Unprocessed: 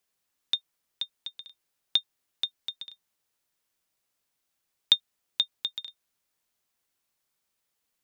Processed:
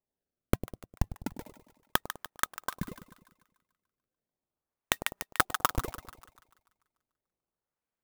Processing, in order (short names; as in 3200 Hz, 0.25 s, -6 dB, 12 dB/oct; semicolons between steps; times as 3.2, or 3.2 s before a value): Wiener smoothing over 9 samples; gate -58 dBFS, range -16 dB; treble ducked by the level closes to 990 Hz, closed at -29 dBFS; 1.15–2.71 notch 3500 Hz, Q 8.4; 4.95–5.85 comb 5 ms, depth 94%; decimation with a swept rate 29×, swing 160% 0.34 Hz; split-band echo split 810 Hz, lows 0.101 s, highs 0.146 s, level -13 dB; downsampling 11025 Hz; maximiser +15 dB; clock jitter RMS 0.061 ms; gain -3.5 dB